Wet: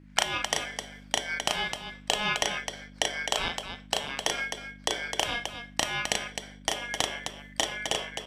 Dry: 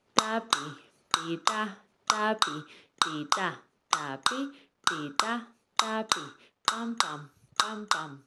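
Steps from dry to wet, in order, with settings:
low-shelf EQ 79 Hz +11 dB
ring modulation 1,900 Hz
hum with harmonics 50 Hz, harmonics 6, −53 dBFS −2 dB per octave
loudspeakers that aren't time-aligned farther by 12 metres −3 dB, 89 metres −7 dB

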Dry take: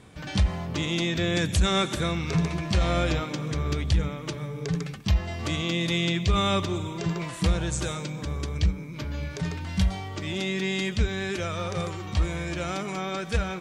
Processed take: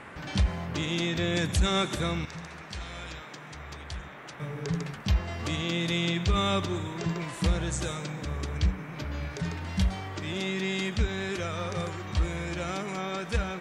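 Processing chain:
0:02.25–0:04.40: guitar amp tone stack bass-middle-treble 5-5-5
noise in a band 170–2,100 Hz −44 dBFS
level −2.5 dB

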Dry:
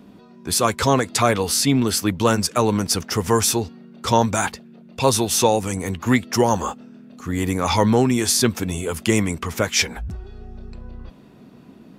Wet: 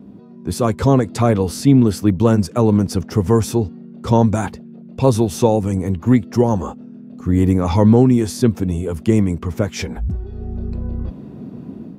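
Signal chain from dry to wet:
high-pass filter 49 Hz
tilt shelving filter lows +9.5 dB, about 760 Hz
automatic gain control gain up to 7 dB
level −1 dB

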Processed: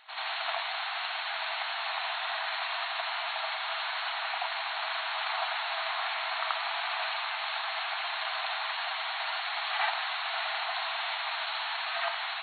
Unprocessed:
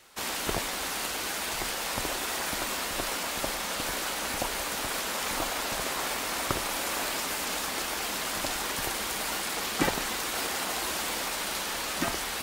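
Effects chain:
brick-wall band-pass 630–4,400 Hz
backwards echo 82 ms −5 dB

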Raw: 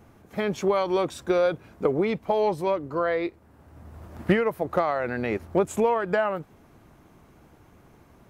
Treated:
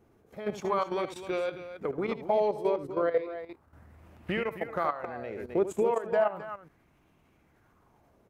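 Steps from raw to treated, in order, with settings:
loudspeakers that aren't time-aligned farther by 26 metres −10 dB, 90 metres −9 dB
output level in coarse steps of 12 dB
auto-filter bell 0.35 Hz 380–2,700 Hz +9 dB
level −6 dB

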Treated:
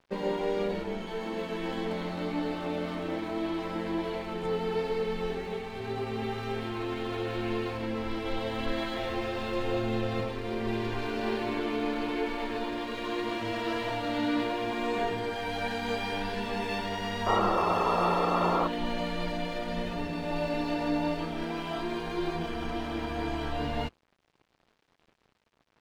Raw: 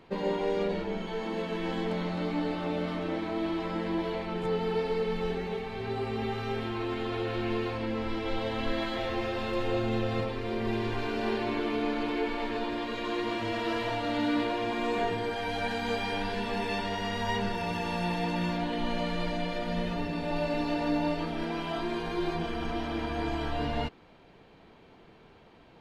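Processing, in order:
sound drawn into the spectrogram noise, 0:17.26–0:18.68, 320–1,400 Hz −27 dBFS
mains-hum notches 60/120/180 Hz
dead-zone distortion −51.5 dBFS

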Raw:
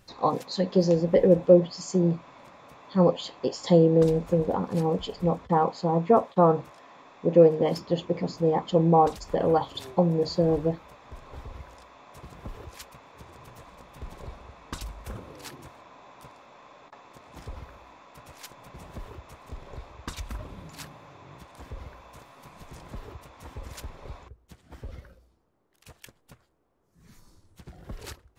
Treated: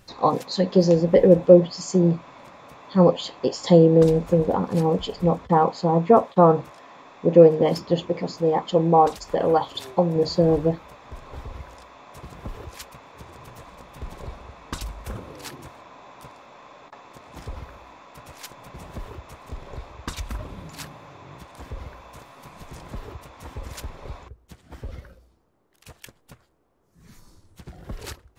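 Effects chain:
0:08.10–0:10.16: low-shelf EQ 250 Hz −7.5 dB
level +4.5 dB

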